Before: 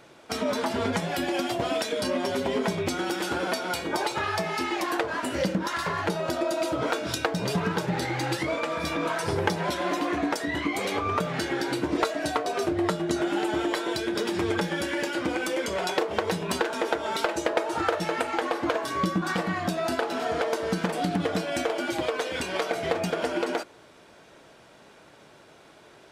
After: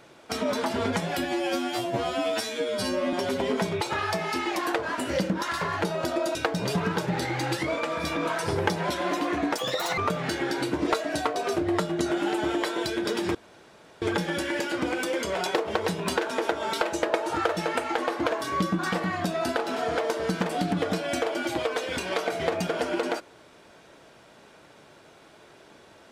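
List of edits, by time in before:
1.25–2.19 stretch 2×
2.87–4.06 cut
6.6–7.15 cut
10.38–11.08 speed 176%
14.45 insert room tone 0.67 s

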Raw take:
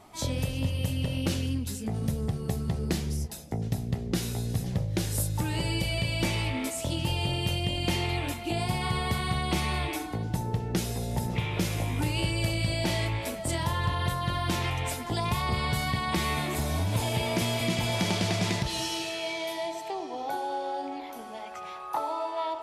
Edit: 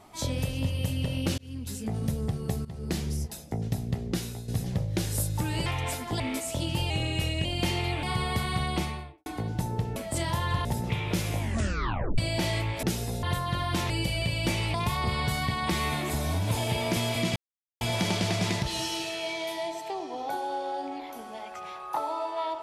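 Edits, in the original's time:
1.38–1.78 fade in
2.65–3 fade in linear, from -17 dB
4.06–4.48 fade out, to -10.5 dB
5.66–6.5 swap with 14.65–15.19
7.2–7.7 speed 91%
8.28–8.78 cut
9.41–10.01 studio fade out
10.71–11.11 swap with 13.29–13.98
11.85 tape stop 0.79 s
17.81 insert silence 0.45 s

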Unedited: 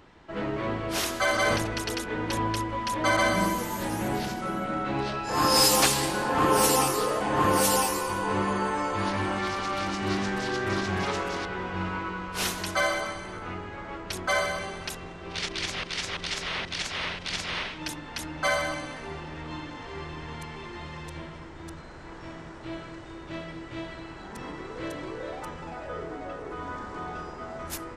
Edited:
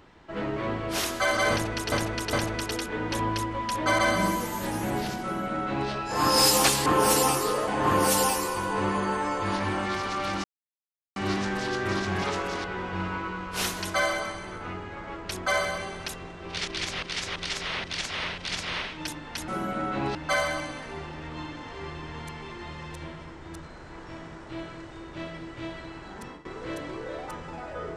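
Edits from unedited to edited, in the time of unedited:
1.51–1.92 loop, 3 plays
4.41–5.08 copy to 18.29
6.04–6.39 cut
9.97 insert silence 0.72 s
24.34–24.59 fade out, to -17 dB

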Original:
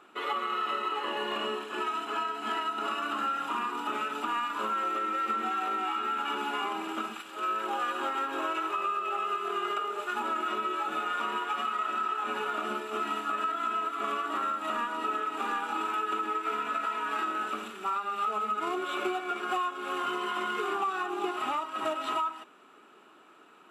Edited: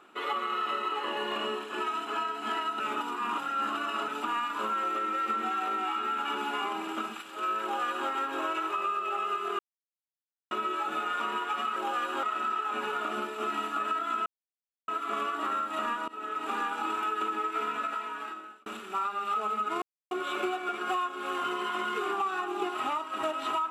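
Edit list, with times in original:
2.8–4.08 reverse
7.62–8.09 copy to 11.76
9.59–10.51 mute
13.79 insert silence 0.62 s
14.99–15.32 fade in, from -22 dB
16.64–17.57 fade out
18.73 insert silence 0.29 s

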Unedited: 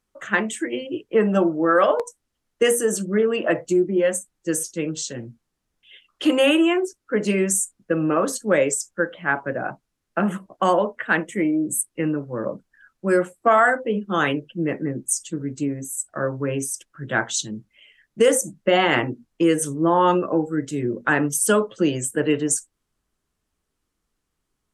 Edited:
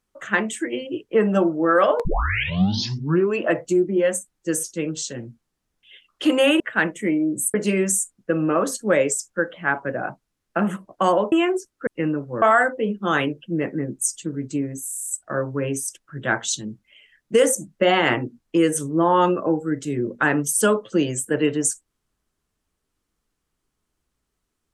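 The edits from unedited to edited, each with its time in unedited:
2.05 tape start 1.37 s
6.6–7.15 swap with 10.93–11.87
12.42–13.49 cut
15.93 stutter 0.03 s, 8 plays

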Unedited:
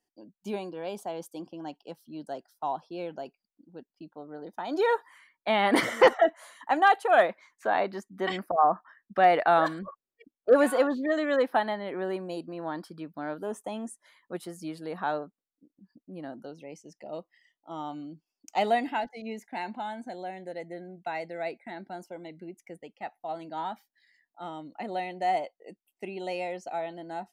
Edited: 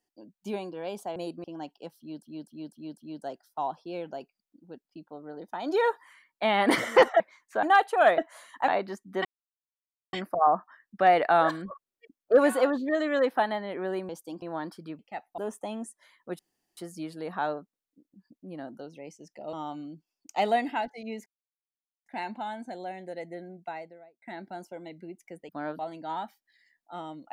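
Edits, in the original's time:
1.16–1.49 swap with 12.26–12.54
2.03–2.28 loop, 5 plays
6.25–6.75 swap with 7.3–7.73
8.3 insert silence 0.88 s
13.11–13.41 swap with 22.88–23.27
14.42 insert room tone 0.38 s
17.18–17.72 cut
19.45 insert silence 0.80 s
20.83–21.61 studio fade out

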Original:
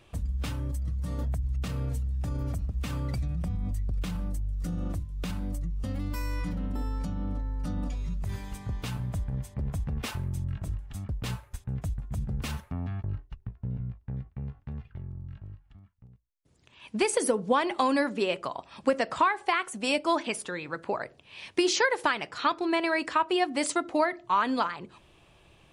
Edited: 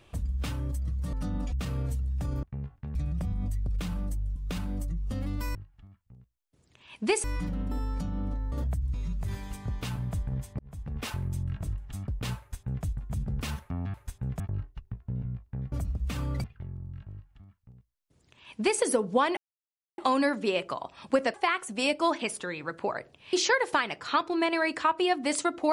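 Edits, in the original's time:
1.13–1.55 swap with 7.56–7.95
2.46–3.18 swap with 14.27–14.79
4.59–5.09 cut
9.6–10.12 fade in linear
11.4–11.86 copy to 12.95
15.47–17.16 copy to 6.28
17.72 insert silence 0.61 s
19.08–19.39 cut
21.38–21.64 cut

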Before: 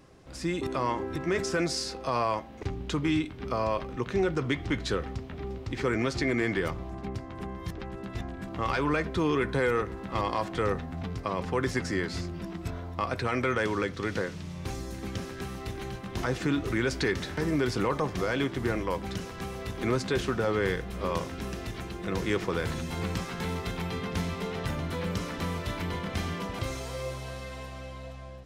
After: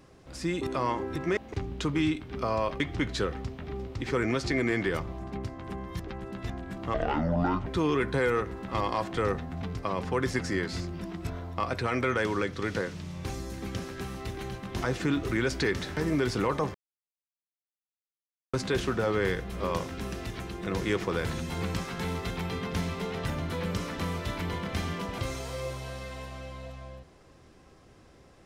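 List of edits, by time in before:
1.37–2.46 cut
3.89–4.51 cut
8.65–9.07 speed 58%
18.15–19.94 mute

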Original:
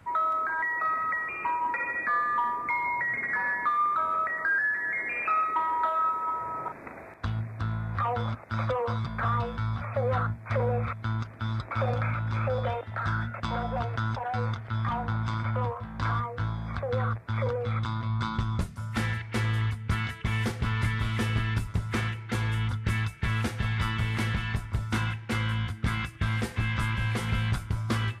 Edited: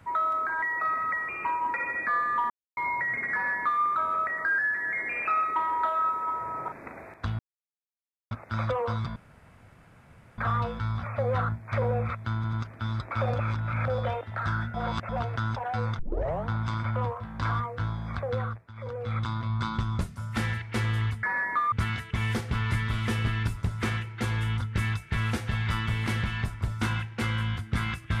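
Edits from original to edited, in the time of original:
2.5–2.77 mute
3.33–3.82 copy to 19.83
7.39–8.31 mute
9.16 insert room tone 1.22 s
11.13 stutter 0.09 s, 3 plays
11.99–12.48 reverse
13.34–13.69 reverse
14.59 tape start 0.48 s
16.88–17.79 dip -16 dB, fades 0.44 s

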